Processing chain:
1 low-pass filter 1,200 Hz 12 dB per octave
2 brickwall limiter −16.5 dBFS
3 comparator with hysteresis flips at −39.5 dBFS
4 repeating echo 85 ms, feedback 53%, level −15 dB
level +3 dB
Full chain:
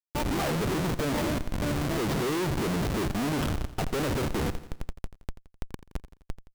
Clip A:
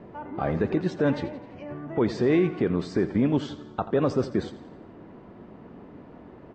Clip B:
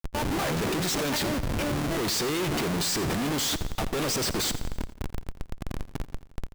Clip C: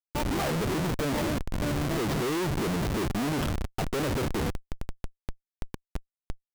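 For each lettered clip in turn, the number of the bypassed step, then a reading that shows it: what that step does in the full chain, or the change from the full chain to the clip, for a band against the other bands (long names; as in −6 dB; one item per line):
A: 3, change in crest factor +6.5 dB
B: 1, 8 kHz band +9.0 dB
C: 4, echo-to-direct ratio −13.5 dB to none audible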